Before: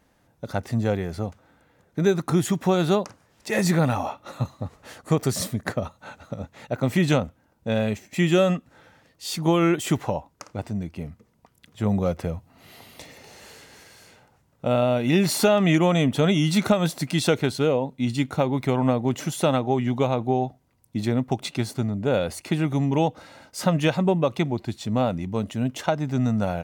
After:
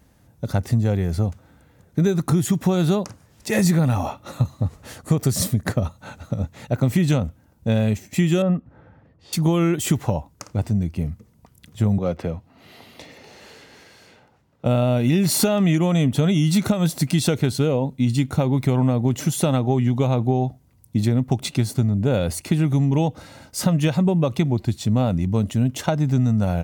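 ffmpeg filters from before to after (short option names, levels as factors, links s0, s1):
-filter_complex "[0:a]asettb=1/sr,asplit=3[s0][s1][s2];[s0]atrim=end=8.424[s3];[s1]atrim=start=8.42:end=9.33,asetpts=PTS-STARTPTS,afade=t=in:d=0.004:c=qsin,afade=t=out:st=0.906:d=0.004:c=qsin,lowpass=1300[s4];[s2]atrim=start=9.326[s5];[s3][s4]acrossfade=d=0.004:c1=hsin:c2=qsin[s6];[s6][s5]acrossfade=d=0.004:c1=qsin:c2=hsin,asettb=1/sr,asplit=3[s7][s8][s9];[s7]atrim=end=11.984[s10];[s8]atrim=start=11.98:end=14.65,asetpts=PTS-STARTPTS,afade=t=in:d=0.004:c=qsin,afade=t=out:st=2.666:d=0.004:c=qsin,acrossover=split=210 4800:gain=0.224 1 0.178[s11][s12][s13];[s11][s12][s13]amix=inputs=3:normalize=0[s14];[s9]atrim=start=14.646[s15];[s10][s14]acrossfade=d=0.004:c1=hsin:c2=qsin[s16];[s16][s15]acrossfade=d=0.004:c1=qsin:c2=hsin,equalizer=f=73:w=0.32:g=12.5,acompressor=threshold=0.178:ratio=6,highshelf=f=4900:g=9"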